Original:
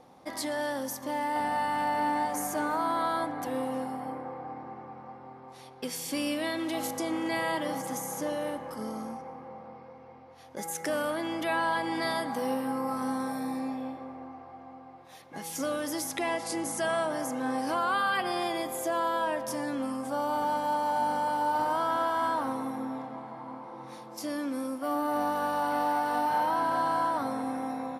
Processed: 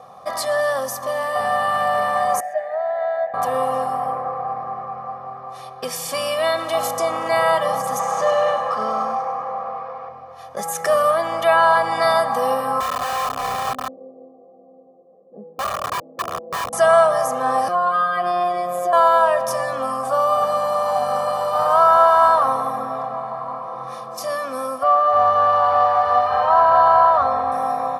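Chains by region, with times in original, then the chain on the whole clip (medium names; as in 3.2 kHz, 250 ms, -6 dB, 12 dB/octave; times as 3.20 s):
2.40–3.34 s: two resonant band-passes 1.1 kHz, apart 1.6 oct + comb 1.1 ms, depth 35%
7.99–10.09 s: distance through air 100 m + feedback echo behind a high-pass 99 ms, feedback 59%, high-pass 3.6 kHz, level -6.5 dB + overdrive pedal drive 12 dB, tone 6.5 kHz, clips at -22.5 dBFS
12.80–16.73 s: Chebyshev band-pass 200–500 Hz, order 3 + integer overflow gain 32.5 dB
17.68–18.93 s: tilt EQ -2 dB/octave + compression 3:1, threshold -30 dBFS + robot voice 177 Hz
24.83–27.52 s: low-pass 3.6 kHz + resonant low shelf 100 Hz +11.5 dB, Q 3
whole clip: high-pass 87 Hz; high-order bell 1 kHz +9 dB 1.3 oct; comb 1.7 ms, depth 97%; trim +5.5 dB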